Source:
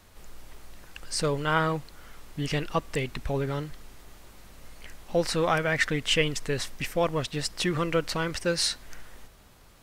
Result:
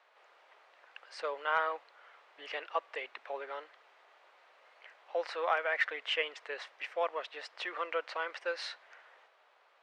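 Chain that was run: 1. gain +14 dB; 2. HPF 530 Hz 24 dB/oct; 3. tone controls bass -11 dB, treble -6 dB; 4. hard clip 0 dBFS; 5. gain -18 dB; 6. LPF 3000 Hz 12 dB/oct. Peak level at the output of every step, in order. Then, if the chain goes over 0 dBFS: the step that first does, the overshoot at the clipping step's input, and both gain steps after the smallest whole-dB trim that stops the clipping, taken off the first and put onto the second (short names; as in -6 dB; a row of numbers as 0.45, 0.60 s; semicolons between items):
+5.0, +3.5, +3.5, 0.0, -18.0, -17.5 dBFS; step 1, 3.5 dB; step 1 +10 dB, step 5 -14 dB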